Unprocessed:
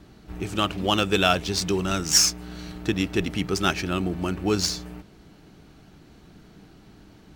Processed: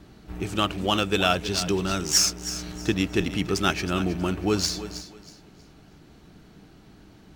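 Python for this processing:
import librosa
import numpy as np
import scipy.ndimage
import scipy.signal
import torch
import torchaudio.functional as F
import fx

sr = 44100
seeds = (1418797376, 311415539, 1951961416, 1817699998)

p1 = fx.rider(x, sr, range_db=4, speed_s=0.5)
p2 = x + (p1 * librosa.db_to_amplitude(-2.0))
p3 = fx.echo_thinned(p2, sr, ms=319, feedback_pct=28, hz=170.0, wet_db=-12.5)
y = p3 * librosa.db_to_amplitude(-6.0)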